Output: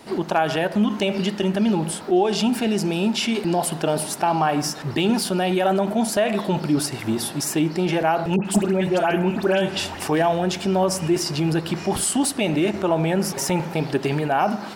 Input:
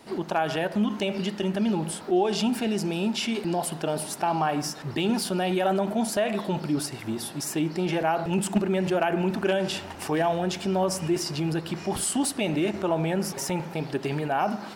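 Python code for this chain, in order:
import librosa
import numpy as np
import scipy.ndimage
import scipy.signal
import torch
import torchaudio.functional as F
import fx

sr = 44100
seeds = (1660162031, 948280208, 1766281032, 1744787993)

p1 = fx.rider(x, sr, range_db=10, speed_s=0.5)
p2 = x + F.gain(torch.from_numpy(p1), -2.0).numpy()
y = fx.dispersion(p2, sr, late='highs', ms=94.0, hz=1900.0, at=(8.36, 10.0))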